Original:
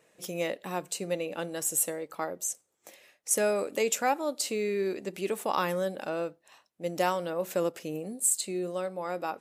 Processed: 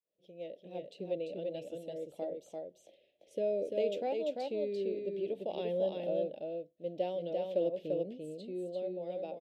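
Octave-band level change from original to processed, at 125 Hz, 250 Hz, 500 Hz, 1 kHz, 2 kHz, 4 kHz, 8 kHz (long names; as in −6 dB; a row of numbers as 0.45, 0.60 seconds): −7.0 dB, −6.0 dB, −3.0 dB, −13.5 dB, −19.0 dB, −12.0 dB, below −35 dB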